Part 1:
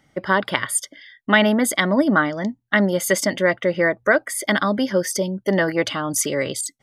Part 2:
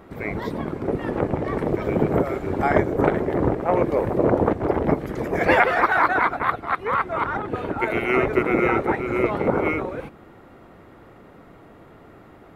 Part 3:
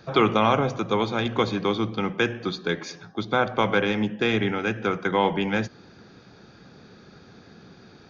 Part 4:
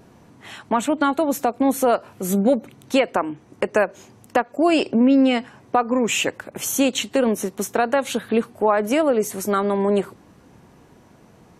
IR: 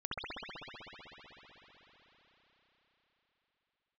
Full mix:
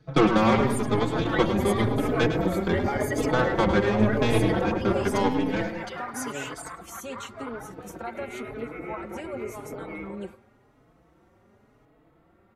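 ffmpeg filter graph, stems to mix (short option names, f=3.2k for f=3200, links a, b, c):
-filter_complex "[0:a]aecho=1:1:7.3:0.93,volume=-15.5dB,asplit=2[a][b];[b]volume=-19.5dB[c];[1:a]alimiter=limit=-14dB:level=0:latency=1:release=57,adelay=250,volume=-1dB,afade=t=out:st=4.83:d=0.62:silence=0.281838,asplit=2[d][e];[e]volume=-12.5dB[f];[2:a]lowshelf=f=410:g=10.5,aeval=exprs='0.75*(cos(1*acos(clip(val(0)/0.75,-1,1)))-cos(1*PI/2))+0.188*(cos(2*acos(clip(val(0)/0.75,-1,1)))-cos(2*PI/2))+0.075*(cos(7*acos(clip(val(0)/0.75,-1,1)))-cos(7*PI/2))':c=same,volume=-2.5dB,asplit=2[g][h];[h]volume=-8dB[i];[3:a]adelay=250,volume=-15dB[j];[c][f][i]amix=inputs=3:normalize=0,aecho=0:1:105|210|315|420|525:1|0.37|0.137|0.0507|0.0187[k];[a][d][g][j][k]amix=inputs=5:normalize=0,lowshelf=f=140:g=3,asplit=2[l][m];[m]adelay=4.2,afreqshift=0.92[n];[l][n]amix=inputs=2:normalize=1"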